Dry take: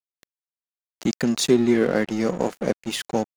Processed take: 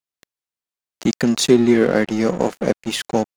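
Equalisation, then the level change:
high-shelf EQ 12,000 Hz −4 dB
+4.5 dB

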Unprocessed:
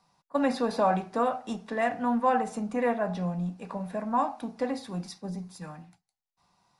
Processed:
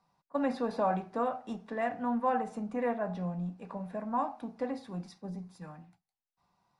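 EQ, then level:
high-shelf EQ 3,400 Hz −10 dB
−4.5 dB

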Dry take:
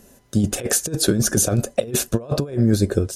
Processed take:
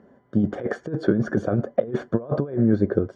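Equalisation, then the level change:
Savitzky-Golay smoothing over 41 samples
high-pass filter 140 Hz 12 dB per octave
high-frequency loss of the air 170 metres
0.0 dB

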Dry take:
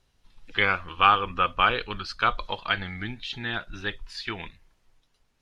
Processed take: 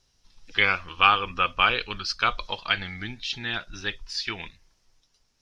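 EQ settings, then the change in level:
parametric band 5,500 Hz +14 dB 0.72 octaves
dynamic equaliser 2,500 Hz, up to +6 dB, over −39 dBFS, Q 2.5
−2.0 dB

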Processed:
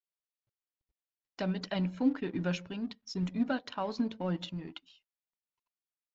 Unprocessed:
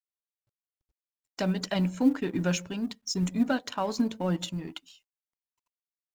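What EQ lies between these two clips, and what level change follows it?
low-pass filter 4,800 Hz 24 dB per octave
−5.0 dB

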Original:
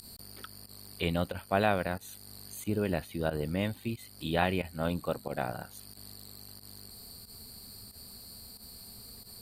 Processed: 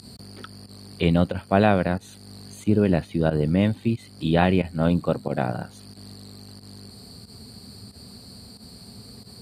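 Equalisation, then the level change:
band-pass filter 110–7,400 Hz
low-shelf EQ 400 Hz +11 dB
+4.5 dB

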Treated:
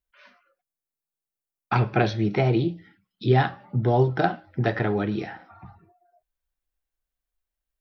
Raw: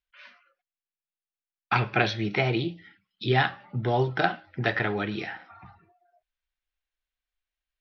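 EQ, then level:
parametric band 2,700 Hz −12 dB 2.6 octaves
+6.0 dB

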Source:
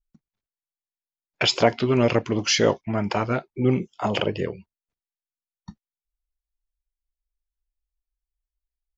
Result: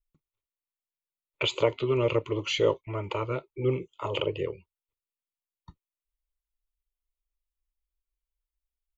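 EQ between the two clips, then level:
dynamic equaliser 1,800 Hz, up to −4 dB, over −34 dBFS, Q 0.95
phaser with its sweep stopped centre 1,100 Hz, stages 8
−2.0 dB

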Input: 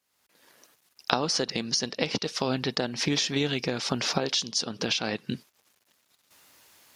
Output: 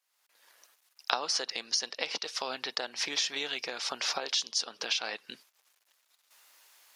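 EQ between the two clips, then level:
high-pass filter 710 Hz 12 dB per octave
−2.5 dB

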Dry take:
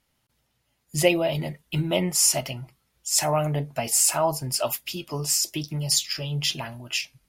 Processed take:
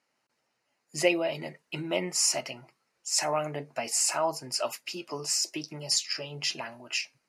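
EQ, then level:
dynamic equaliser 720 Hz, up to −5 dB, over −36 dBFS, Q 0.92
band-pass filter 340–6,200 Hz
parametric band 3,400 Hz −14 dB 0.29 octaves
0.0 dB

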